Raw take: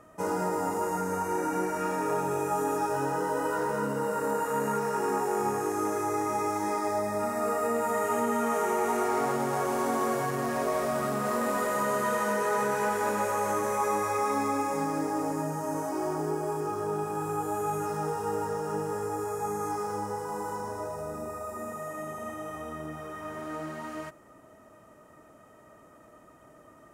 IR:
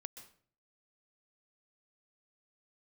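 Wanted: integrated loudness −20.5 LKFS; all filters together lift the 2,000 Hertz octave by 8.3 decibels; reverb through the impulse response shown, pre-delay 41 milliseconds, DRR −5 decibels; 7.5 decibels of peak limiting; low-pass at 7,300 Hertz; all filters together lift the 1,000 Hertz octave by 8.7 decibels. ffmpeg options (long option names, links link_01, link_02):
-filter_complex "[0:a]lowpass=7300,equalizer=frequency=1000:width_type=o:gain=9,equalizer=frequency=2000:width_type=o:gain=7,alimiter=limit=-16dB:level=0:latency=1,asplit=2[link_01][link_02];[1:a]atrim=start_sample=2205,adelay=41[link_03];[link_02][link_03]afir=irnorm=-1:irlink=0,volume=9.5dB[link_04];[link_01][link_04]amix=inputs=2:normalize=0,volume=-1dB"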